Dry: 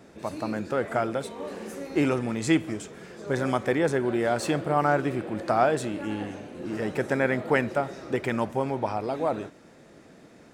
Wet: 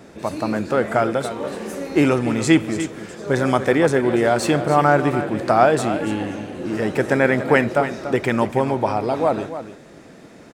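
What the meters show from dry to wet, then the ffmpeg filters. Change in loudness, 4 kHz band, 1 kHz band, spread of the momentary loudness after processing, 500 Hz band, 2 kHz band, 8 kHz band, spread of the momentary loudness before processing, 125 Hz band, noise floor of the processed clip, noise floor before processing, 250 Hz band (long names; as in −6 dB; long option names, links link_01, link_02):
+7.5 dB, +8.0 dB, +8.0 dB, 12 LU, +8.0 dB, +8.0 dB, +8.0 dB, 13 LU, +8.0 dB, −44 dBFS, −52 dBFS, +8.0 dB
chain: -af "aecho=1:1:288:0.266,volume=7.5dB"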